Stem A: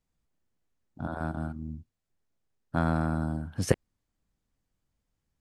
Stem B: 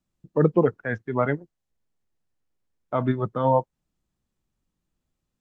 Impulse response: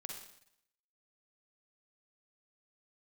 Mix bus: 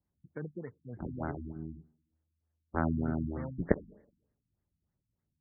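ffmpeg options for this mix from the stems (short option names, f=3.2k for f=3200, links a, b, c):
-filter_complex "[0:a]aeval=exprs='val(0)*sin(2*PI*80*n/s)':c=same,volume=-2.5dB,asplit=2[a][b];[b]volume=-8.5dB[c];[1:a]lowshelf=f=390:g=11.5,acompressor=threshold=-21dB:ratio=4,acrusher=samples=15:mix=1:aa=0.000001:lfo=1:lforange=15:lforate=0.61,volume=-18.5dB,asplit=2[d][e];[e]volume=-21.5dB[f];[2:a]atrim=start_sample=2205[g];[c][f]amix=inputs=2:normalize=0[h];[h][g]afir=irnorm=-1:irlink=0[i];[a][d][i]amix=inputs=3:normalize=0,highpass=44,afftfilt=real='re*lt(b*sr/1024,280*pow(2300/280,0.5+0.5*sin(2*PI*3.3*pts/sr)))':imag='im*lt(b*sr/1024,280*pow(2300/280,0.5+0.5*sin(2*PI*3.3*pts/sr)))':win_size=1024:overlap=0.75"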